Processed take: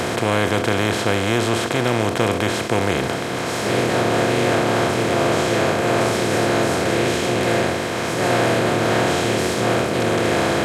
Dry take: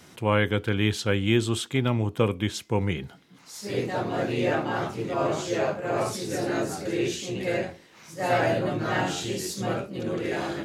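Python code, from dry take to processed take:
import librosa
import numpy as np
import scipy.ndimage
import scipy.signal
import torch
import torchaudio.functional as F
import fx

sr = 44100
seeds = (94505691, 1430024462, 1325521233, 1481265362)

y = fx.bin_compress(x, sr, power=0.2)
y = y * 10.0 ** (-2.0 / 20.0)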